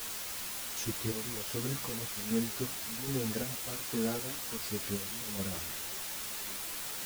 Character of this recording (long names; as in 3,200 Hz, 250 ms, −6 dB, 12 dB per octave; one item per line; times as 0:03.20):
chopped level 1.3 Hz, depth 60%, duty 45%
a quantiser's noise floor 6 bits, dither triangular
a shimmering, thickened sound